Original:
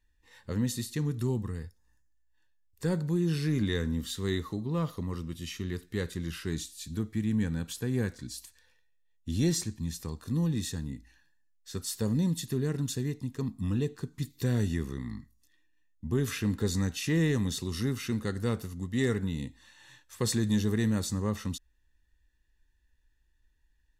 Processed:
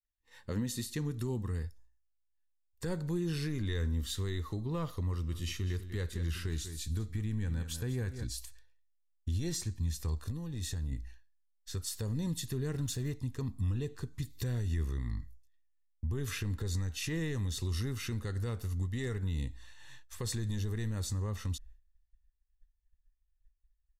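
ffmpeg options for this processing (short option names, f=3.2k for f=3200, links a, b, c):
-filter_complex "[0:a]asplit=3[a][b][c];[a]afade=t=out:st=5.32:d=0.02[d];[b]aecho=1:1:195:0.237,afade=t=in:st=5.32:d=0.02,afade=t=out:st=8.23:d=0.02[e];[c]afade=t=in:st=8.23:d=0.02[f];[d][e][f]amix=inputs=3:normalize=0,asettb=1/sr,asplit=3[g][h][i];[g]atrim=end=10.144[j];[h]atrim=start=10.14:end=10.92,asetpts=PTS-STARTPTS,afade=t=in:d=0.004:c=qsin,afade=t=out:st=0.776:d=0.004:c=qsin,acompressor=threshold=-35dB:ratio=6:attack=3.2:release=140:knee=1:detection=peak[k];[i]atrim=start=10.916[l];[j][k]acrossfade=d=0.004:c1=hsin:c2=qsin[m];[m][l]acrossfade=d=0.004:c1=qsin:c2=hsin,asettb=1/sr,asplit=3[n][o][p];[n]atrim=end=12.734[q];[o]atrim=start=12.73:end=13.14,asetpts=PTS-STARTPTS,afade=t=in:d=0.004:c=qsin,afade=t=out:st=0.406:d=0.004:c=qsin,aeval=exprs='val(0)+0.5*0.00376*sgn(val(0))':c=same[r];[p]atrim=start=13.136[s];[q][r]acrossfade=d=0.004:c1=hsin:c2=qsin[t];[t][s]acrossfade=d=0.004:c1=qsin:c2=hsin,agate=range=-33dB:threshold=-54dB:ratio=3:detection=peak,asubboost=boost=9.5:cutoff=61,alimiter=level_in=2dB:limit=-24dB:level=0:latency=1:release=206,volume=-2dB"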